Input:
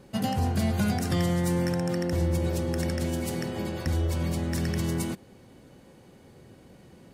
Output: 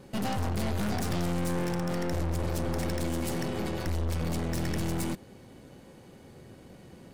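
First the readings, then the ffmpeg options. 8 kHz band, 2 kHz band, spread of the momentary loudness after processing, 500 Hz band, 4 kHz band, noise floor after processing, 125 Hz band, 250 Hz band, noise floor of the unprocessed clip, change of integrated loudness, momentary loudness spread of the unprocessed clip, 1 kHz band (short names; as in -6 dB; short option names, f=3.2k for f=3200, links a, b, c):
-2.0 dB, -2.0 dB, 20 LU, -2.5 dB, -2.5 dB, -52 dBFS, -4.0 dB, -3.5 dB, -53 dBFS, -3.5 dB, 5 LU, -1.0 dB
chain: -af "aeval=exprs='(tanh(50.1*val(0)+0.7)-tanh(0.7))/50.1':c=same,volume=5.5dB"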